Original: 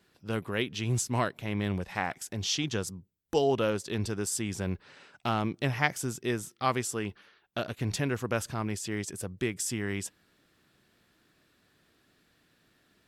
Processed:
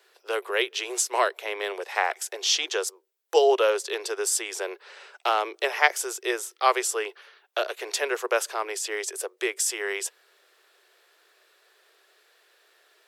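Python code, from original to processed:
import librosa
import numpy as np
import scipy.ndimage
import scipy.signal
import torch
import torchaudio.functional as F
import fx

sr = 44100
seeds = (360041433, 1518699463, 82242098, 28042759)

y = scipy.signal.sosfilt(scipy.signal.butter(12, 380.0, 'highpass', fs=sr, output='sos'), x)
y = F.gain(torch.from_numpy(y), 7.5).numpy()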